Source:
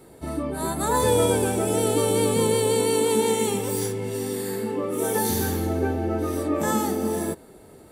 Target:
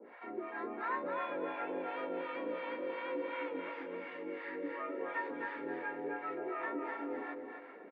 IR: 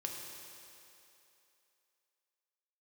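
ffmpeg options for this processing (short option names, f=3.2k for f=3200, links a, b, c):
-filter_complex "[0:a]equalizer=f=410:w=0.39:g=-7,acompressor=threshold=-46dB:ratio=2,crystalizer=i=8:c=0,aresample=16000,volume=29dB,asoftclip=hard,volume=-29dB,aresample=44100,acrossover=split=600[a][b];[a]aeval=exprs='val(0)*(1-1/2+1/2*cos(2*PI*2.8*n/s))':c=same[c];[b]aeval=exprs='val(0)*(1-1/2-1/2*cos(2*PI*2.8*n/s))':c=same[d];[c][d]amix=inputs=2:normalize=0,highpass=f=180:t=q:w=0.5412,highpass=f=180:t=q:w=1.307,lowpass=f=2.1k:t=q:w=0.5176,lowpass=f=2.1k:t=q:w=0.7071,lowpass=f=2.1k:t=q:w=1.932,afreqshift=71,asplit=2[e][f];[f]aecho=0:1:258|516|774|1032:0.562|0.169|0.0506|0.0152[g];[e][g]amix=inputs=2:normalize=0,volume=4.5dB"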